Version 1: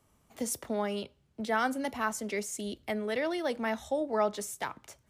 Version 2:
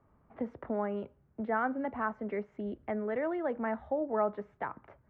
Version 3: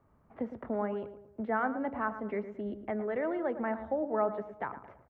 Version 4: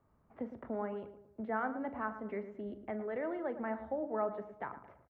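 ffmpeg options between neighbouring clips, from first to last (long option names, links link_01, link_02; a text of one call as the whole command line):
ffmpeg -i in.wav -filter_complex "[0:a]lowpass=frequency=1700:width=0.5412,lowpass=frequency=1700:width=1.3066,asplit=2[link_01][link_02];[link_02]acompressor=threshold=-39dB:ratio=6,volume=-2dB[link_03];[link_01][link_03]amix=inputs=2:normalize=0,volume=-3dB" out.wav
ffmpeg -i in.wav -filter_complex "[0:a]asplit=2[link_01][link_02];[link_02]adelay=111,lowpass=frequency=1400:poles=1,volume=-10dB,asplit=2[link_03][link_04];[link_04]adelay=111,lowpass=frequency=1400:poles=1,volume=0.46,asplit=2[link_05][link_06];[link_06]adelay=111,lowpass=frequency=1400:poles=1,volume=0.46,asplit=2[link_07][link_08];[link_08]adelay=111,lowpass=frequency=1400:poles=1,volume=0.46,asplit=2[link_09][link_10];[link_10]adelay=111,lowpass=frequency=1400:poles=1,volume=0.46[link_11];[link_01][link_03][link_05][link_07][link_09][link_11]amix=inputs=6:normalize=0" out.wav
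ffmpeg -i in.wav -filter_complex "[0:a]asplit=2[link_01][link_02];[link_02]adelay=41,volume=-14dB[link_03];[link_01][link_03]amix=inputs=2:normalize=0,volume=-5dB" out.wav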